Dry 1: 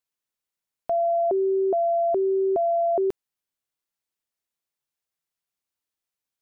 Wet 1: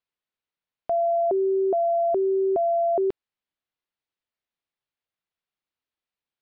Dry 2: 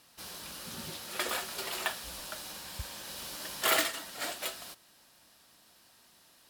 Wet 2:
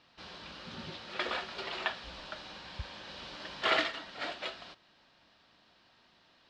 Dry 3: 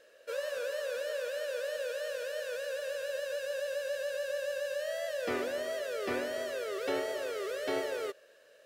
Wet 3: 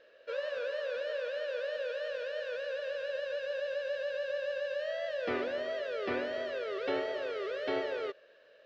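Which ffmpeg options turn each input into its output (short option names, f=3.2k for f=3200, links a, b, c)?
-af "lowpass=f=4.2k:w=0.5412,lowpass=f=4.2k:w=1.3066"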